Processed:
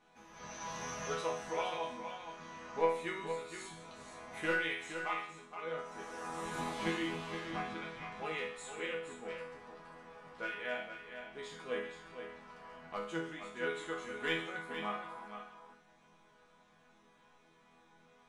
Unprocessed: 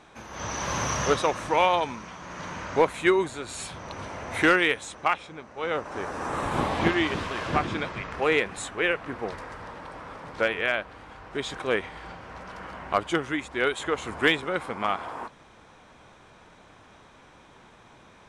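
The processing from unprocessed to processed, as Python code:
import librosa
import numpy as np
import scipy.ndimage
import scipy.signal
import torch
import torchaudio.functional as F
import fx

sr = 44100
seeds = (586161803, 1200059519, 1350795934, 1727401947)

y = fx.high_shelf(x, sr, hz=4200.0, db=11.0, at=(5.78, 6.99))
y = fx.resonator_bank(y, sr, root=52, chord='major', decay_s=0.58)
y = y + 10.0 ** (-8.5 / 20.0) * np.pad(y, (int(468 * sr / 1000.0), 0))[:len(y)]
y = y * 10.0 ** (5.5 / 20.0)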